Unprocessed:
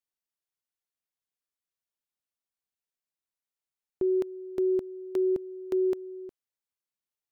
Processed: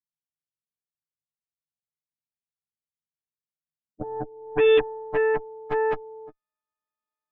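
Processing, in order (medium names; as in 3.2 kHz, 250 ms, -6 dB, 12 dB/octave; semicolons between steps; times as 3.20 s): partials quantised in pitch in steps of 6 st; low-pass sweep 150 Hz -> 1.2 kHz, 3.65–5.67 s; Chebyshev shaper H 3 -24 dB, 7 -31 dB, 8 -15 dB, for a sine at -14 dBFS; trim +2.5 dB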